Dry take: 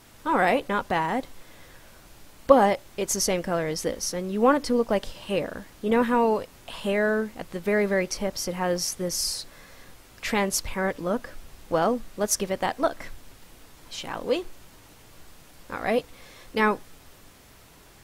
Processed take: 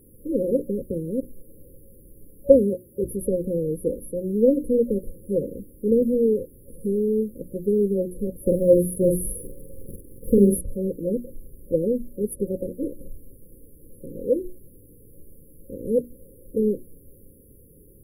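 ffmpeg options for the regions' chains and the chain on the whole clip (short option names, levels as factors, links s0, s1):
-filter_complex "[0:a]asettb=1/sr,asplit=3[s0][s1][s2];[s0]atrim=end=2.544[s3];[s1]atrim=start=2.54:end=3.03,asetpts=PTS-STARTPTS,afade=t=in:d=0.004:c=qsin,afade=t=out:st=0.486:d=0.004:c=qsin,highpass=53,aeval=exprs='val(0)+0.02*(sin(2*PI*60*n/s)+sin(2*PI*2*60*n/s)/2+sin(2*PI*3*60*n/s)/3+sin(2*PI*4*60*n/s)/4+sin(2*PI*5*60*n/s)/5)':c=same[s4];[s2]atrim=start=3.026[s5];[s3][s4]acrossfade=d=0.004:c1=hsin:c2=qsin[s6];[s6][s5]acrossfade=d=0.004:c1=qsin:c2=hsin,asettb=1/sr,asplit=3[s7][s8][s9];[s7]atrim=end=8.464[s10];[s8]atrim=start=8.46:end=10.61,asetpts=PTS-STARTPTS,afade=t=in:d=0.004:c=qsin,afade=t=out:st=2.146:d=0.004:c=qsin,acrusher=bits=8:dc=4:mix=0:aa=0.000001,acontrast=79,asplit=2[s11][s12];[s12]adelay=45,volume=0.631[s13];[s11][s13]amix=inputs=2:normalize=0,atrim=end_sample=94815[s14];[s9]atrim=start=10.606[s15];[s10][s14]acrossfade=d=0.004:c1=hsin:c2=qsin[s16];[s16][s15]acrossfade=d=0.004:c1=qsin:c2=hsin,bandreject=f=60:t=h:w=6,bandreject=f=120:t=h:w=6,bandreject=f=180:t=h:w=6,bandreject=f=240:t=h:w=6,bandreject=f=300:t=h:w=6,bandreject=f=360:t=h:w=6,acrossover=split=9700[s17][s18];[s18]acompressor=threshold=0.00141:ratio=4:attack=1:release=60[s19];[s17][s19]amix=inputs=2:normalize=0,afftfilt=real='re*(1-between(b*sr/4096,560,9700))':imag='im*(1-between(b*sr/4096,560,9700))':win_size=4096:overlap=0.75,volume=1.58"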